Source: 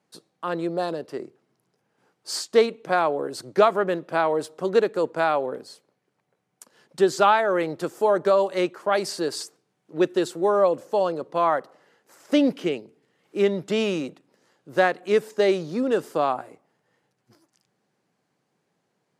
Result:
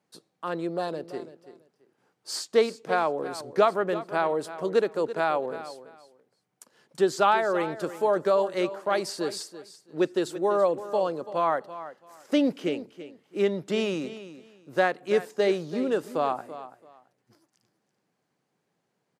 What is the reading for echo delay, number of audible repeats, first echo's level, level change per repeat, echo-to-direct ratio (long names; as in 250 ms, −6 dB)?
334 ms, 2, −14.0 dB, −13.5 dB, −14.0 dB